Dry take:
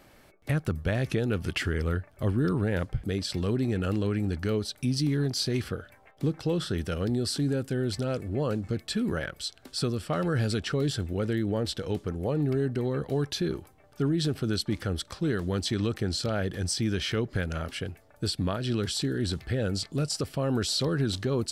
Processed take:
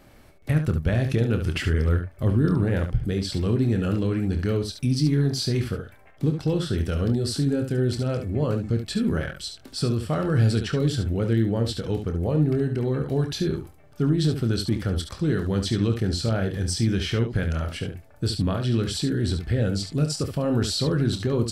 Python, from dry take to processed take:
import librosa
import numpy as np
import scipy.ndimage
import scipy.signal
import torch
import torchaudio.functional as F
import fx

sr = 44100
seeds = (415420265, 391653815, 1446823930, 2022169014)

y = fx.low_shelf(x, sr, hz=250.0, db=7.0)
y = fx.room_early_taps(y, sr, ms=(26, 71), db=(-8.5, -8.0))